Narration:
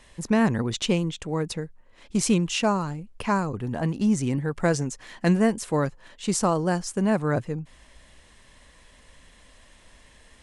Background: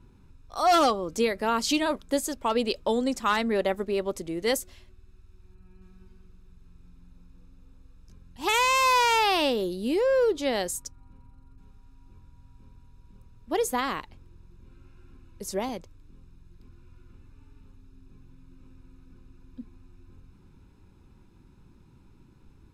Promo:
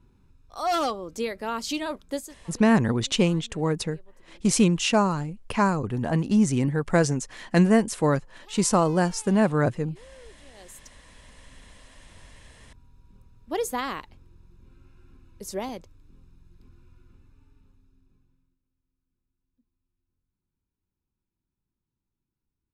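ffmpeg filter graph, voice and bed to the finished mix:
ffmpeg -i stem1.wav -i stem2.wav -filter_complex "[0:a]adelay=2300,volume=2dB[link_01];[1:a]volume=22dB,afade=type=out:start_time=2.15:duration=0.22:silence=0.0668344,afade=type=in:start_time=10.53:duration=1.03:silence=0.0473151,afade=type=out:start_time=16.78:duration=1.82:silence=0.0354813[link_02];[link_01][link_02]amix=inputs=2:normalize=0" out.wav

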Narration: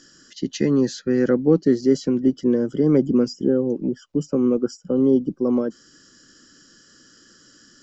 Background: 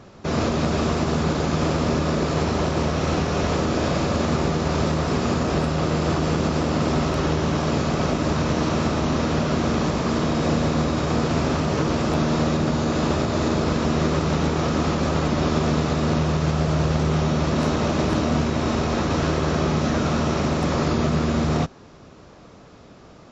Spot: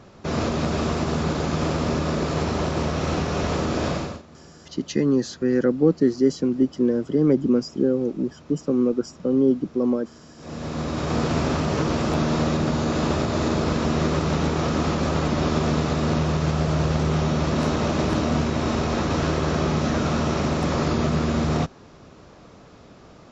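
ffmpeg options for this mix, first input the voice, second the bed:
ffmpeg -i stem1.wav -i stem2.wav -filter_complex "[0:a]adelay=4350,volume=-1.5dB[link_01];[1:a]volume=23dB,afade=type=out:start_time=3.89:duration=0.33:silence=0.0630957,afade=type=in:start_time=10.37:duration=0.85:silence=0.0562341[link_02];[link_01][link_02]amix=inputs=2:normalize=0" out.wav

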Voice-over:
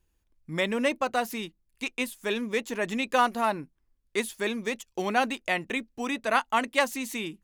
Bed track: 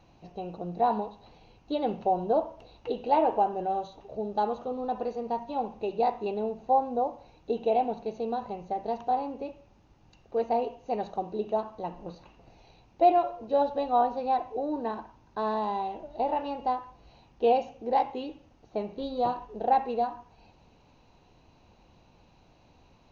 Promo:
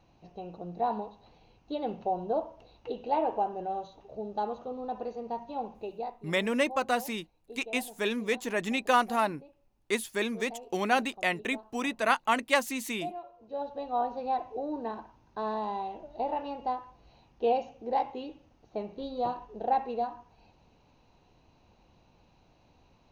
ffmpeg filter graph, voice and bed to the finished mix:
ffmpeg -i stem1.wav -i stem2.wav -filter_complex "[0:a]adelay=5750,volume=-1dB[link_01];[1:a]volume=9.5dB,afade=type=out:start_time=5.71:duration=0.49:silence=0.223872,afade=type=in:start_time=13.32:duration=0.93:silence=0.199526[link_02];[link_01][link_02]amix=inputs=2:normalize=0" out.wav

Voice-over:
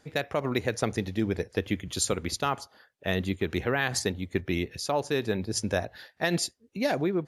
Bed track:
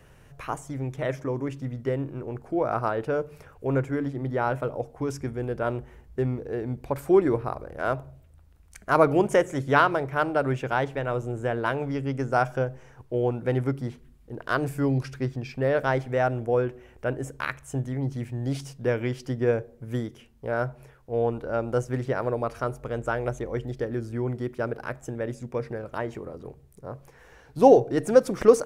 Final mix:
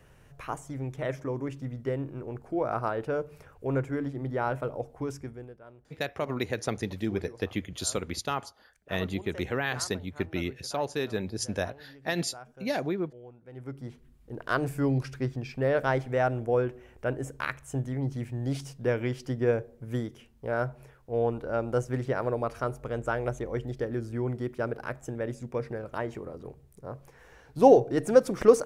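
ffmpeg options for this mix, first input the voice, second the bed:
ffmpeg -i stem1.wav -i stem2.wav -filter_complex "[0:a]adelay=5850,volume=-3dB[link_01];[1:a]volume=18dB,afade=type=out:start_time=4.99:duration=0.59:silence=0.1,afade=type=in:start_time=13.51:duration=0.79:silence=0.0841395[link_02];[link_01][link_02]amix=inputs=2:normalize=0" out.wav

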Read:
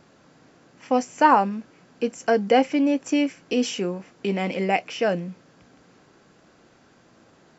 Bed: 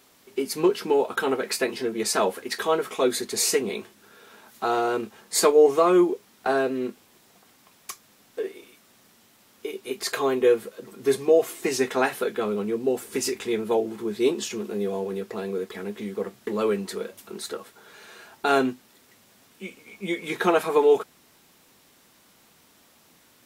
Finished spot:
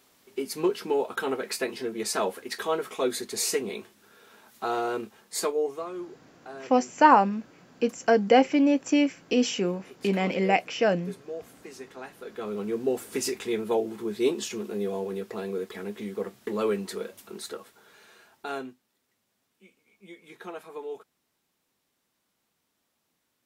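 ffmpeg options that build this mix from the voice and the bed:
ffmpeg -i stem1.wav -i stem2.wav -filter_complex "[0:a]adelay=5800,volume=-0.5dB[link_01];[1:a]volume=12dB,afade=type=out:start_time=5:duration=0.91:silence=0.188365,afade=type=in:start_time=12.19:duration=0.55:silence=0.149624,afade=type=out:start_time=17.16:duration=1.64:silence=0.149624[link_02];[link_01][link_02]amix=inputs=2:normalize=0" out.wav

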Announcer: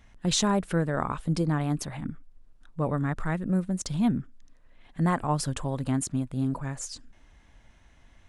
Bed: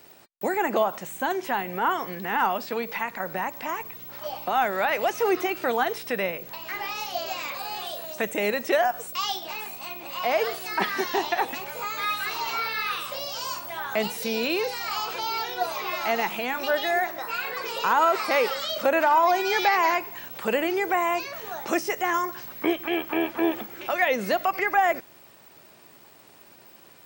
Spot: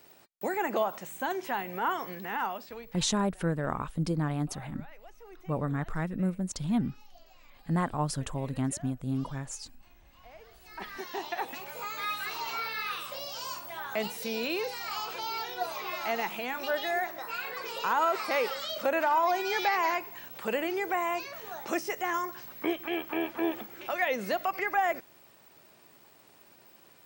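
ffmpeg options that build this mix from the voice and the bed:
ffmpeg -i stem1.wav -i stem2.wav -filter_complex "[0:a]adelay=2700,volume=-3.5dB[link_01];[1:a]volume=17dB,afade=type=out:start_time=2.11:duration=0.95:silence=0.0707946,afade=type=in:start_time=10.48:duration=1.29:silence=0.0749894[link_02];[link_01][link_02]amix=inputs=2:normalize=0" out.wav

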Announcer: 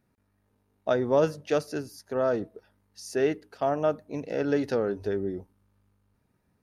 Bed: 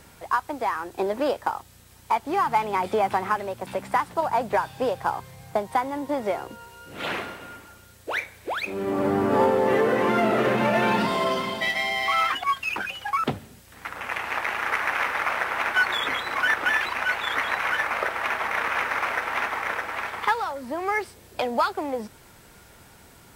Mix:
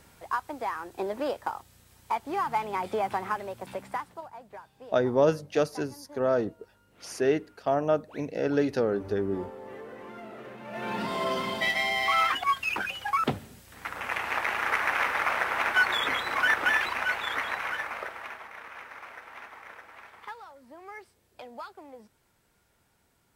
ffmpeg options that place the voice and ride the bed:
ffmpeg -i stem1.wav -i stem2.wav -filter_complex "[0:a]adelay=4050,volume=0.5dB[link_01];[1:a]volume=14.5dB,afade=type=out:start_time=3.67:duration=0.64:silence=0.158489,afade=type=in:start_time=10.65:duration=0.96:silence=0.0944061,afade=type=out:start_time=16.68:duration=1.81:silence=0.141254[link_02];[link_01][link_02]amix=inputs=2:normalize=0" out.wav

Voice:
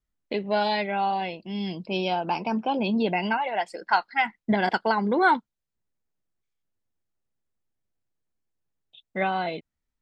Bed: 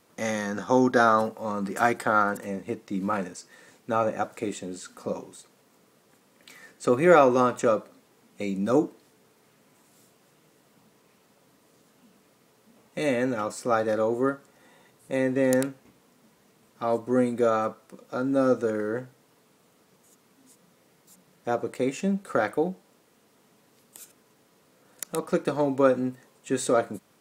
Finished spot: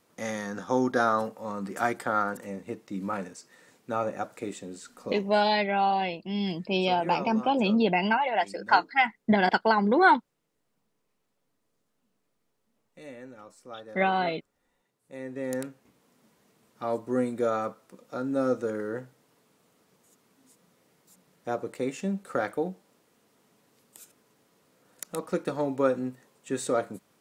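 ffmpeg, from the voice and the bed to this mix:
ffmpeg -i stem1.wav -i stem2.wav -filter_complex "[0:a]adelay=4800,volume=1dB[link_01];[1:a]volume=10.5dB,afade=type=out:start_time=5.19:duration=0.25:silence=0.188365,afade=type=in:start_time=15:duration=1.19:silence=0.177828[link_02];[link_01][link_02]amix=inputs=2:normalize=0" out.wav

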